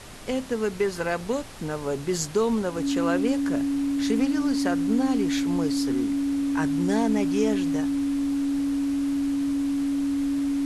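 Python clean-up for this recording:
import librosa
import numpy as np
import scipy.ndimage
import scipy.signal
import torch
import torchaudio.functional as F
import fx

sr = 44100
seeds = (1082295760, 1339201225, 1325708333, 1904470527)

y = fx.notch(x, sr, hz=280.0, q=30.0)
y = fx.noise_reduce(y, sr, print_start_s=0.0, print_end_s=0.5, reduce_db=30.0)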